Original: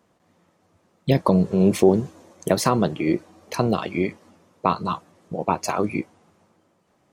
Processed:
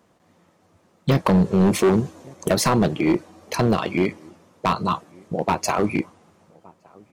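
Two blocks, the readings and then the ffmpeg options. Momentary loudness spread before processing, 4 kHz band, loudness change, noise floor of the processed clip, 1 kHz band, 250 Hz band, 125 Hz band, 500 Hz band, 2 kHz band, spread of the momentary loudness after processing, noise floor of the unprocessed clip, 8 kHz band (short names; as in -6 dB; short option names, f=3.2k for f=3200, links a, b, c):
14 LU, +3.5 dB, +1.0 dB, -61 dBFS, +1.0 dB, +1.5 dB, +2.0 dB, 0.0 dB, +4.0 dB, 12 LU, -65 dBFS, +3.5 dB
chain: -filter_complex "[0:a]asplit=2[a][b];[b]adelay=1166,volume=-28dB,highshelf=f=4k:g=-26.2[c];[a][c]amix=inputs=2:normalize=0,asoftclip=type=hard:threshold=-16dB,volume=3.5dB"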